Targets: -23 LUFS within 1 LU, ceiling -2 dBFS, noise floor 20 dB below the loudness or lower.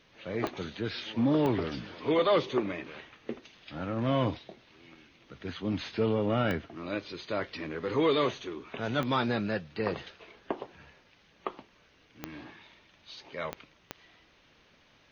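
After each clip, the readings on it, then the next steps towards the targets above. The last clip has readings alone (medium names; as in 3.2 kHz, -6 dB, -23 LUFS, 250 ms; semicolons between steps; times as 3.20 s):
clicks found 7; loudness -31.5 LUFS; peak level -16.0 dBFS; loudness target -23.0 LUFS
-> de-click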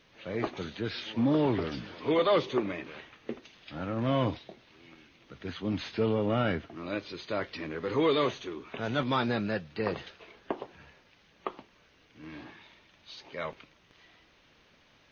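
clicks found 0; loudness -31.5 LUFS; peak level -16.0 dBFS; loudness target -23.0 LUFS
-> trim +8.5 dB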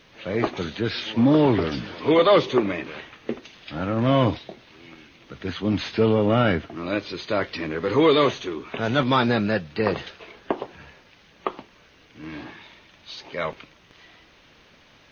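loudness -23.0 LUFS; peak level -7.5 dBFS; noise floor -55 dBFS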